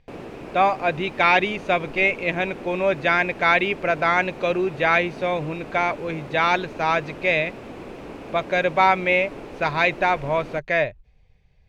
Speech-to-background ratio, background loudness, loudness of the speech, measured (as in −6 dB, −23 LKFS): 16.5 dB, −38.0 LKFS, −21.5 LKFS